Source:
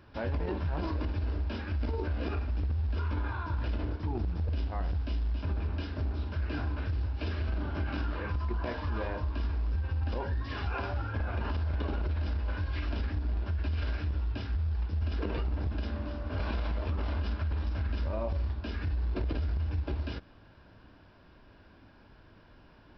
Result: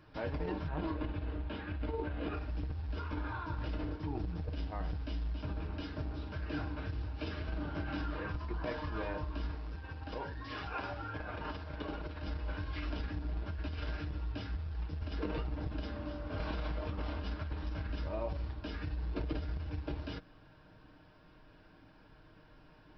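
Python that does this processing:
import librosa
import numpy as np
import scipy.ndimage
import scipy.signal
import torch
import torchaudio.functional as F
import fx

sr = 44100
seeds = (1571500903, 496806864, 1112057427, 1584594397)

y = fx.lowpass(x, sr, hz=3800.0, slope=24, at=(0.68, 2.34))
y = fx.low_shelf(y, sr, hz=190.0, db=-6.5, at=(9.55, 12.23))
y = y + 0.52 * np.pad(y, (int(6.5 * sr / 1000.0), 0))[:len(y)]
y = F.gain(torch.from_numpy(y), -3.5).numpy()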